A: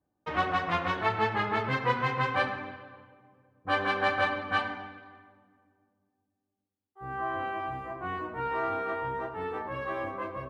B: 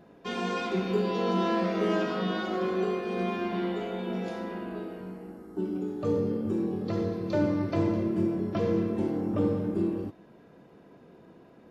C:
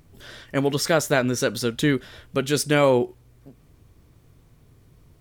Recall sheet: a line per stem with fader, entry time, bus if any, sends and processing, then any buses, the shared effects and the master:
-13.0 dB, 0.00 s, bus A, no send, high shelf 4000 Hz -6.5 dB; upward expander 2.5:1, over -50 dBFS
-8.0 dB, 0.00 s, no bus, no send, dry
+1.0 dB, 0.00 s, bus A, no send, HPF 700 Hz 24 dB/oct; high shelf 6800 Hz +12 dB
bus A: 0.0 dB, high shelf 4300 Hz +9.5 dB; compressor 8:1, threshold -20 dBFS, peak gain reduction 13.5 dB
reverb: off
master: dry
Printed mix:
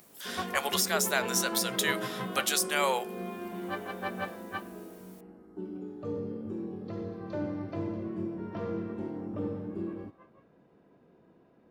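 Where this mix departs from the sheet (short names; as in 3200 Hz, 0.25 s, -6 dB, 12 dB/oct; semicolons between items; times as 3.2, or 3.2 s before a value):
stem A -13.0 dB -> -5.5 dB; master: extra high shelf 3700 Hz -7.5 dB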